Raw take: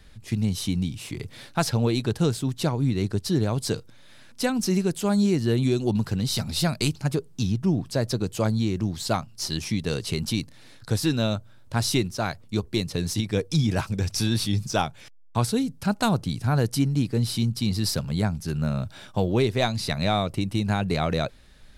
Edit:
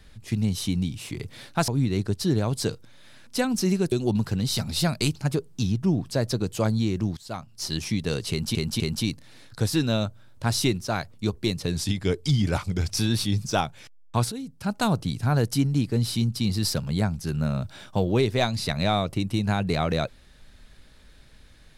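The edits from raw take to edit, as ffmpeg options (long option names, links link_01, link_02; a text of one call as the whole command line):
ffmpeg -i in.wav -filter_complex "[0:a]asplit=9[link_01][link_02][link_03][link_04][link_05][link_06][link_07][link_08][link_09];[link_01]atrim=end=1.682[link_10];[link_02]atrim=start=2.728:end=4.972[link_11];[link_03]atrim=start=5.718:end=8.97,asetpts=PTS-STARTPTS,afade=type=out:start_time=3.248:duration=0.004:curve=hsin:silence=0.0841395[link_12];[link_04]atrim=start=8.97:end=10.352,asetpts=PTS-STARTPTS,afade=type=in:duration=0.58:silence=0.0841395[link_13];[link_05]atrim=start=10.098:end=10.352[link_14];[link_06]atrim=start=10.098:end=13.064[link_15];[link_07]atrim=start=13.06:end=14.09,asetpts=PTS-STARTPTS,asetrate=40572,aresample=44100[link_16];[link_08]atrim=start=14.086:end=15.53,asetpts=PTS-STARTPTS,afade=type=out:start_time=1.44:duration=0.004:curve=hsin:silence=0.223872[link_17];[link_09]atrim=start=15.53,asetpts=PTS-STARTPTS,afade=type=in:duration=0.63:silence=0.223872[link_18];[link_10][link_11]acrossfade=duration=0.004:curve1=hsin:curve2=hsin[link_19];[link_12][link_13]concat=n=2:v=0:a=1[link_20];[link_19][link_20]acrossfade=duration=0.004:curve1=hsin:curve2=hsin[link_21];[link_21][link_14]acrossfade=duration=0.004:curve1=hsin:curve2=hsin[link_22];[link_22][link_15]acrossfade=duration=0.004:curve1=hsin:curve2=hsin[link_23];[link_23][link_16]acrossfade=duration=0.004:curve1=hsin:curve2=hsin[link_24];[link_17][link_18]concat=n=2:v=0:a=1[link_25];[link_24][link_25]acrossfade=duration=0.004:curve1=hsin:curve2=hsin" out.wav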